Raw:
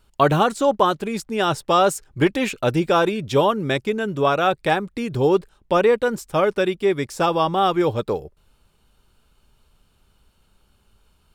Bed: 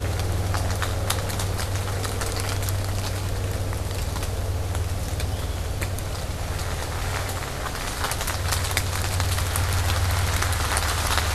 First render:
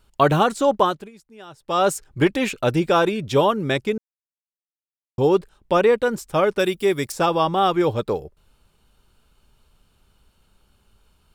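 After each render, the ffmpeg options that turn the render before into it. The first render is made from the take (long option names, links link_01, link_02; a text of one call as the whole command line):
ffmpeg -i in.wav -filter_complex "[0:a]asettb=1/sr,asplit=3[link_01][link_02][link_03];[link_01]atrim=end=6.594[link_04];[link_02]atrim=start=6.59:end=7.12,asetpts=PTS-STARTPTS,afade=type=in:duration=0.004:curve=qsin,afade=type=out:start_time=0.526:duration=0.004:curve=qsin,aemphasis=mode=production:type=50fm[link_05];[link_03]atrim=start=7.116[link_06];[link_04][link_05]acrossfade=duration=0.004:curve1=hsin:curve2=qsin[link_07];[link_07][link_06]acrossfade=duration=0.004:curve1=qsin:curve2=hsin,asplit=5[link_08][link_09][link_10][link_11][link_12];[link_08]atrim=end=1.11,asetpts=PTS-STARTPTS,afade=type=out:start_time=0.81:duration=0.3:silence=0.0891251[link_13];[link_09]atrim=start=1.11:end=1.59,asetpts=PTS-STARTPTS,volume=-21dB[link_14];[link_10]atrim=start=1.59:end=3.98,asetpts=PTS-STARTPTS,afade=type=in:duration=0.3:silence=0.0891251,afade=type=out:start_time=2.386:duration=0.004:curve=hsin[link_15];[link_11]atrim=start=3.98:end=5.18,asetpts=PTS-STARTPTS,volume=0[link_16];[link_12]atrim=start=5.18,asetpts=PTS-STARTPTS,afade=type=in:duration=0.004:curve=hsin[link_17];[link_13][link_14][link_15][link_16][link_17]concat=n=5:v=0:a=1" out.wav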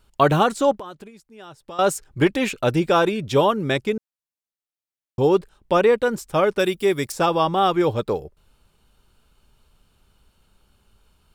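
ffmpeg -i in.wav -filter_complex "[0:a]asettb=1/sr,asplit=3[link_01][link_02][link_03];[link_01]atrim=end=0.724[link_04];[link_02]atrim=start=0.72:end=1.79,asetpts=PTS-STARTPTS,afade=type=in:duration=0.004:curve=qsin,afade=type=out:start_time=1.066:duration=0.004:curve=qsin,acompressor=threshold=-35dB:ratio=4:attack=3.2:release=140:knee=1:detection=peak[link_05];[link_03]atrim=start=1.786[link_06];[link_04][link_05]acrossfade=duration=0.004:curve1=hsin:curve2=qsin[link_07];[link_07][link_06]acrossfade=duration=0.004:curve1=qsin:curve2=hsin" out.wav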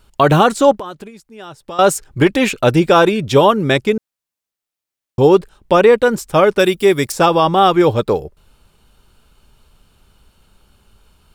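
ffmpeg -i in.wav -af "alimiter=level_in=7.5dB:limit=-1dB:release=50:level=0:latency=1" out.wav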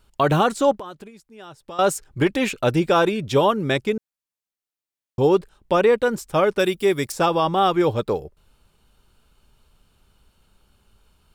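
ffmpeg -i in.wav -af "volume=-7dB" out.wav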